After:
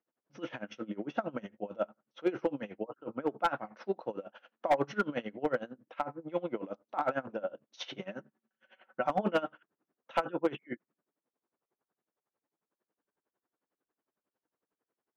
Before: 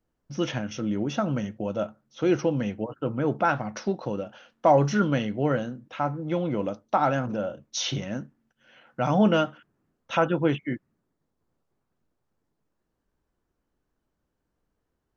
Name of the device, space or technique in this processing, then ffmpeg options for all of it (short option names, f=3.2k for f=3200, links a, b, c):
helicopter radio: -filter_complex "[0:a]highpass=330,lowpass=2.6k,aeval=exprs='val(0)*pow(10,-22*(0.5-0.5*cos(2*PI*11*n/s))/20)':c=same,asoftclip=type=hard:threshold=-19.5dB,asettb=1/sr,asplit=3[a][b][c];[a]atrim=end=7.994[d];[b]atrim=start=7.99:end=9.1,asetpts=PTS-STARTPTS,afade=t=in:d=0.004:c=qsin,afade=t=out:st=1.106:d=0.004:c=qsin,aecho=1:1:5.3:0.57,atrim=end_sample=48951[e];[c]atrim=start=9.096[f];[d][e]acrossfade=d=0.004:c1=hsin:c2=qsin[g];[g][f]acrossfade=d=0.004:c1=qsin:c2=hsin"